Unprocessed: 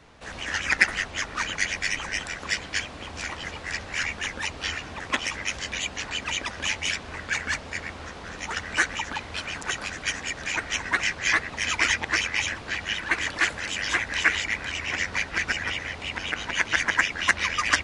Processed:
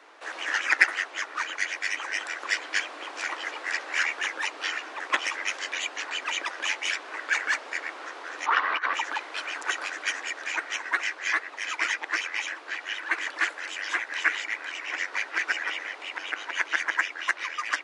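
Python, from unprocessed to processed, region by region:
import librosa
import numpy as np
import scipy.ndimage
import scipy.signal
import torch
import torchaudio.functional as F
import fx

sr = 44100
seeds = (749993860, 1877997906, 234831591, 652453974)

y = fx.chain(x, sr, fx.peak_eq(hz=1100.0, db=14.0, octaves=0.45),
    fx.over_compress(threshold_db=-26.0, ratio=-0.5),
    fx.lowpass(hz=4200.0, slope=24), at=(8.46, 8.94))
y = scipy.signal.sosfilt(scipy.signal.ellip(4, 1.0, 50, 310.0, 'highpass', fs=sr, output='sos'), y)
y = fx.peak_eq(y, sr, hz=1400.0, db=6.5, octaves=1.7)
y = fx.rider(y, sr, range_db=10, speed_s=2.0)
y = y * 10.0 ** (-6.5 / 20.0)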